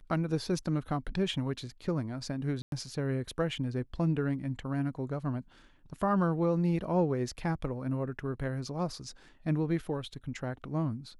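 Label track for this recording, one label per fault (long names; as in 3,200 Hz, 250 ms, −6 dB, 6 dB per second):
2.620000	2.720000	drop-out 102 ms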